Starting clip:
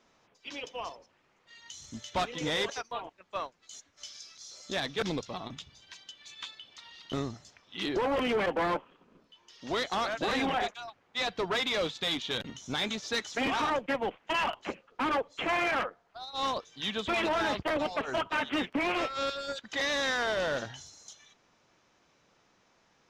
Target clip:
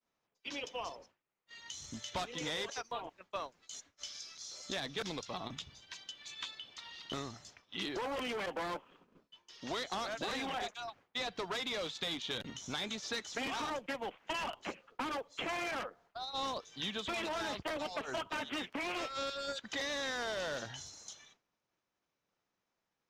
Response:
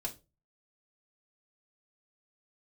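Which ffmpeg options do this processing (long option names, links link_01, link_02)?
-filter_complex "[0:a]agate=range=-33dB:threshold=-54dB:ratio=3:detection=peak,acrossover=split=680|4200[link_01][link_02][link_03];[link_01]acompressor=threshold=-44dB:ratio=4[link_04];[link_02]acompressor=threshold=-42dB:ratio=4[link_05];[link_03]acompressor=threshold=-46dB:ratio=4[link_06];[link_04][link_05][link_06]amix=inputs=3:normalize=0,volume=1dB"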